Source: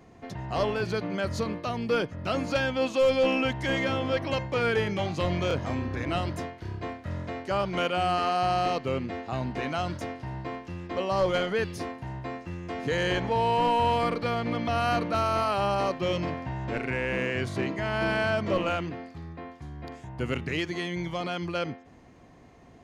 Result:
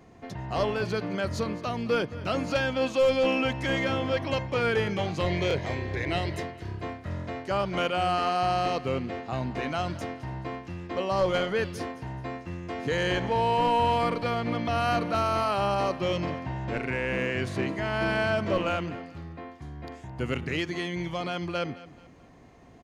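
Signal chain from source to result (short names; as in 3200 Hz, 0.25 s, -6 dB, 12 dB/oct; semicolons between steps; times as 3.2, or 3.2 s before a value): 5.26–6.43 thirty-one-band EQ 250 Hz -10 dB, 400 Hz +7 dB, 1250 Hz -8 dB, 2000 Hz +9 dB, 4000 Hz +6 dB; on a send: feedback echo 0.215 s, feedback 36%, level -18 dB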